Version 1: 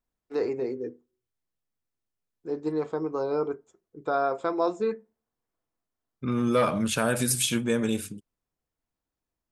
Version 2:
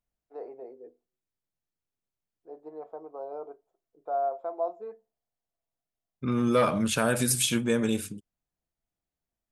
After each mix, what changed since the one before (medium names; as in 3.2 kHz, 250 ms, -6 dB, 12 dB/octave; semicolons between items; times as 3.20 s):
first voice: add band-pass filter 680 Hz, Q 5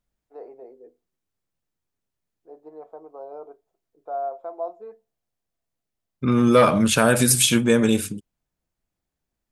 second voice +8.0 dB